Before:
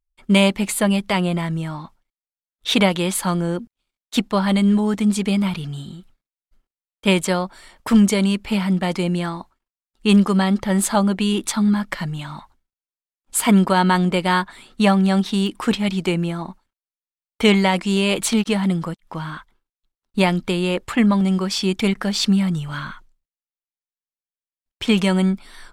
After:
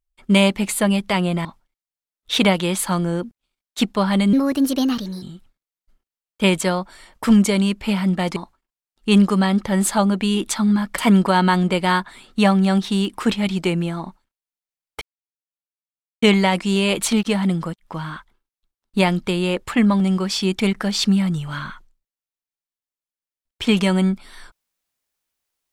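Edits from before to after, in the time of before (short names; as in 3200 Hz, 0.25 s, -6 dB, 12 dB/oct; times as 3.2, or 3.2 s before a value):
1.45–1.81 cut
4.69–5.86 speed 131%
9–9.34 cut
11.96–13.4 cut
17.43 insert silence 1.21 s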